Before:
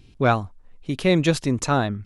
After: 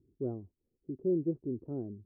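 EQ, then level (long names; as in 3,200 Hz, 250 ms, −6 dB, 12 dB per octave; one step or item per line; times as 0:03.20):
high-pass filter 58 Hz
transistor ladder low-pass 410 Hz, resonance 65%
−7.5 dB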